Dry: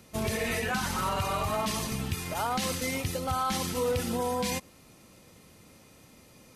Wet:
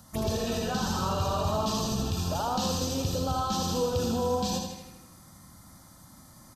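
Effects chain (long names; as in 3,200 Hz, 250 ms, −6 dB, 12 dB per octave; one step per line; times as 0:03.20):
brickwall limiter −24 dBFS, peak gain reduction 3.5 dB
phaser swept by the level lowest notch 370 Hz, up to 2,100 Hz, full sweep at −32.5 dBFS
repeating echo 79 ms, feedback 57%, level −5 dB
level +4.5 dB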